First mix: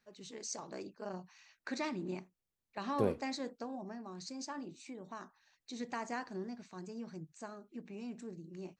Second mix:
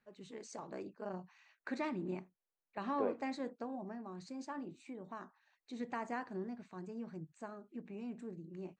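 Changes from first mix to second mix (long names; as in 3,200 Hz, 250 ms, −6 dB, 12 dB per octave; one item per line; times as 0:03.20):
second voice: add band-pass filter 480–2,400 Hz
master: add parametric band 5,600 Hz −14 dB 1.2 octaves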